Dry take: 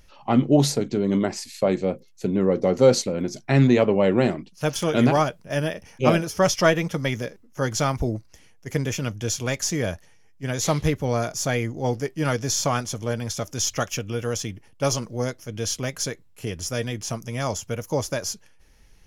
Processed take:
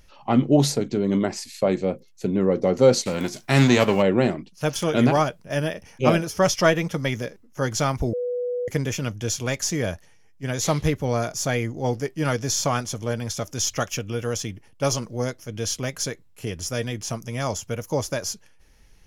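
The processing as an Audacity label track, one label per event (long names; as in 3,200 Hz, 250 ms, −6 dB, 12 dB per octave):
3.050000	4.010000	spectral envelope flattened exponent 0.6
8.130000	8.680000	beep over 491 Hz −23.5 dBFS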